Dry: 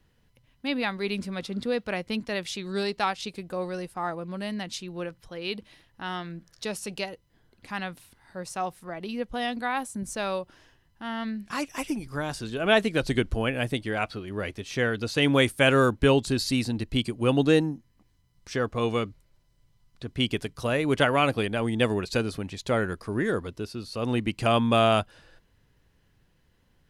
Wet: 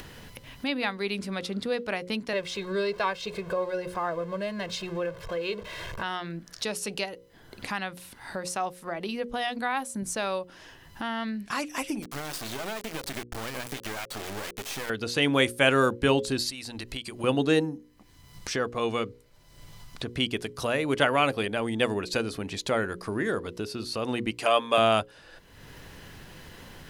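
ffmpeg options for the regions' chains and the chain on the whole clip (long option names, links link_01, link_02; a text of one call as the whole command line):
ffmpeg -i in.wav -filter_complex "[0:a]asettb=1/sr,asplit=3[link_01][link_02][link_03];[link_01]atrim=end=2.334[link_04];[link_02]atrim=start=2.33:end=6.03,asetpts=PTS-STARTPTS,afade=type=in:duration=0.004:curve=qsin,afade=type=out:start_time=3.696:duration=0.004:curve=qsin,aeval=exprs='val(0)+0.5*0.00891*sgn(val(0))':channel_layout=same,lowpass=frequency=1900:poles=1,aecho=1:1:1.9:0.83,atrim=end_sample=163170[link_05];[link_03]atrim=start=6.026[link_06];[link_04][link_05]acrossfade=duration=0.004:curve1=hsin:curve2=qsin[link_07];[link_07][link_06]acrossfade=duration=0.004:curve1=qsin:curve2=hsin,asettb=1/sr,asplit=3[link_08][link_09][link_10];[link_08]atrim=end=12.024[link_11];[link_09]atrim=start=12.02:end=14.9,asetpts=PTS-STARTPTS,afade=type=in:duration=0.004:curve=qsin,afade=type=out:start_time=2.876:duration=0.004:curve=qsin,lowshelf=frequency=200:gain=-5,acompressor=threshold=-31dB:ratio=5:attack=3.2:release=140:knee=1:detection=peak,acrusher=bits=4:dc=4:mix=0:aa=0.000001[link_12];[link_10]atrim=start=14.896[link_13];[link_11][link_12]acrossfade=duration=0.004:curve1=hsin:curve2=qsin[link_14];[link_14][link_13]acrossfade=duration=0.004:curve1=qsin:curve2=hsin,asettb=1/sr,asplit=3[link_15][link_16][link_17];[link_15]atrim=end=16.504[link_18];[link_16]atrim=start=16.5:end=17.24,asetpts=PTS-STARTPTS,afade=type=in:duration=0.004:curve=qsin,afade=type=out:start_time=0.736:duration=0.004:curve=qsin,equalizer=frequency=200:width=0.46:gain=-10,acompressor=threshold=-41dB:ratio=3:attack=3.2:release=140:knee=1:detection=peak[link_19];[link_17]atrim=start=17.236[link_20];[link_18][link_19]acrossfade=duration=0.004:curve1=hsin:curve2=qsin[link_21];[link_21][link_20]acrossfade=duration=0.004:curve1=qsin:curve2=hsin,asettb=1/sr,asplit=3[link_22][link_23][link_24];[link_22]atrim=end=24.314[link_25];[link_23]atrim=start=24.31:end=24.78,asetpts=PTS-STARTPTS,afade=type=in:duration=0.004:curve=qsin,afade=type=out:start_time=0.466:duration=0.004:curve=qsin,highpass=370,aecho=1:1:6.9:0.49,atrim=end_sample=20727[link_26];[link_24]atrim=start=24.776[link_27];[link_25][link_26]acrossfade=duration=0.004:curve1=hsin:curve2=qsin[link_28];[link_28][link_27]acrossfade=duration=0.004:curve1=qsin:curve2=hsin,lowshelf=frequency=160:gain=-8.5,bandreject=frequency=60:width_type=h:width=6,bandreject=frequency=120:width_type=h:width=6,bandreject=frequency=180:width_type=h:width=6,bandreject=frequency=240:width_type=h:width=6,bandreject=frequency=300:width_type=h:width=6,bandreject=frequency=360:width_type=h:width=6,bandreject=frequency=420:width_type=h:width=6,bandreject=frequency=480:width_type=h:width=6,bandreject=frequency=540:width_type=h:width=6,acompressor=mode=upward:threshold=-26dB:ratio=2.5" out.wav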